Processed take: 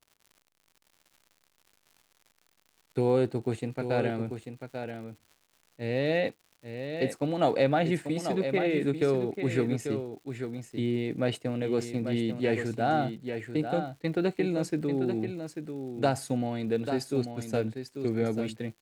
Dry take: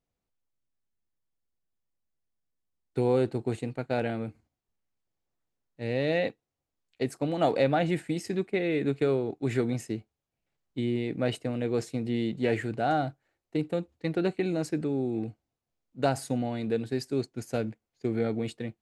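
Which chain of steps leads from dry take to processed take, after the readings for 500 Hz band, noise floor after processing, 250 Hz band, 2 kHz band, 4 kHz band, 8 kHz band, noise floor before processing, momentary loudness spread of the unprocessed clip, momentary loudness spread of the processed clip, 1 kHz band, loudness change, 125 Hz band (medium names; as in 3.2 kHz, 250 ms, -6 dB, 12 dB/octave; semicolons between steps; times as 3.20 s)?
+0.5 dB, -72 dBFS, +0.5 dB, +0.5 dB, +0.5 dB, +0.5 dB, under -85 dBFS, 8 LU, 11 LU, +0.5 dB, 0.0 dB, +0.5 dB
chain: crackle 120 per s -46 dBFS; delay 841 ms -8 dB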